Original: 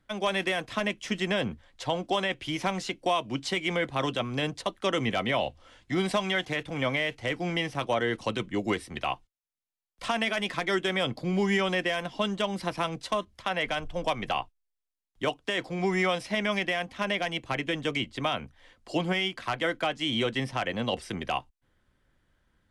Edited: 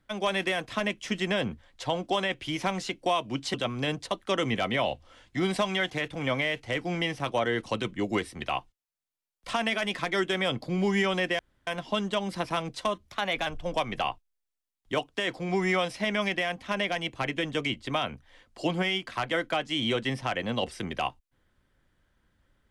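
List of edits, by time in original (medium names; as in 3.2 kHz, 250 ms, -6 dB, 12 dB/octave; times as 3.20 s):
3.54–4.09 s: delete
11.94 s: insert room tone 0.28 s
13.32–13.77 s: speed 108%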